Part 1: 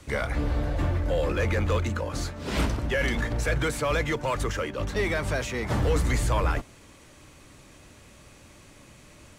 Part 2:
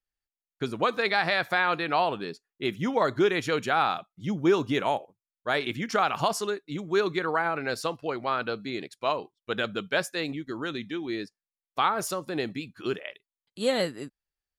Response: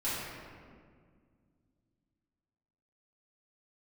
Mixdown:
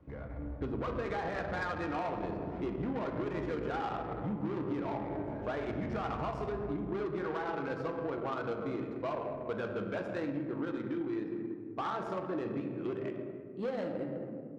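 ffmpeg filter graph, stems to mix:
-filter_complex "[0:a]acompressor=threshold=0.0224:ratio=6,volume=0.376,asplit=2[s0][s1];[s1]volume=0.501[s2];[1:a]asubboost=boost=3:cutoff=70,volume=23.7,asoftclip=hard,volume=0.0422,volume=0.75,asplit=3[s3][s4][s5];[s4]volume=0.531[s6];[s5]apad=whole_len=414018[s7];[s0][s7]sidechaincompress=threshold=0.00282:ratio=8:attack=16:release=251[s8];[2:a]atrim=start_sample=2205[s9];[s2][s6]amix=inputs=2:normalize=0[s10];[s10][s9]afir=irnorm=-1:irlink=0[s11];[s8][s3][s11]amix=inputs=3:normalize=0,adynamicsmooth=sensitivity=1:basefreq=830,highpass=48,acompressor=threshold=0.0251:ratio=6"

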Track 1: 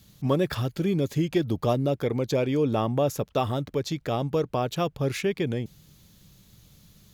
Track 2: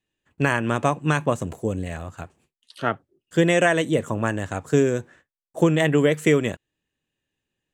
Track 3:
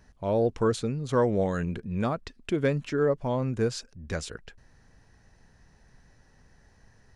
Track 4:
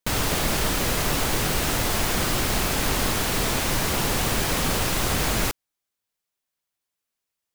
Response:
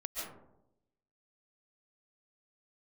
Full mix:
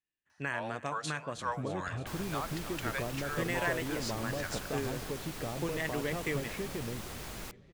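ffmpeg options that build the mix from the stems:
-filter_complex "[0:a]lowpass=2500,acompressor=threshold=0.0316:ratio=6,adelay=1350,volume=0.531,asplit=2[s0][s1];[s1]volume=0.141[s2];[1:a]equalizer=f=1900:w=1.2:g=8,volume=0.119,asplit=2[s3][s4];[s4]volume=0.0944[s5];[2:a]highpass=f=810:w=0.5412,highpass=f=810:w=1.3066,adelay=300,volume=0.708,asplit=2[s6][s7];[s7]volume=0.237[s8];[3:a]adelay=2000,volume=0.106[s9];[s2][s5][s8]amix=inputs=3:normalize=0,aecho=0:1:311|622|933|1244|1555|1866|2177|2488|2799|3110:1|0.6|0.36|0.216|0.13|0.0778|0.0467|0.028|0.0168|0.0101[s10];[s0][s3][s6][s9][s10]amix=inputs=5:normalize=0"

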